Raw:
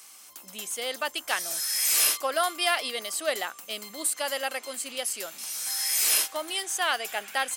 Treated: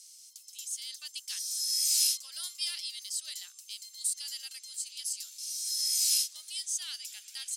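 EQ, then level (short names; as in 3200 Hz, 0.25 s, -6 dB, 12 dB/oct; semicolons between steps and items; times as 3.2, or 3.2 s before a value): ladder band-pass 5900 Hz, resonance 35%; high shelf 3800 Hz +8 dB; +3.0 dB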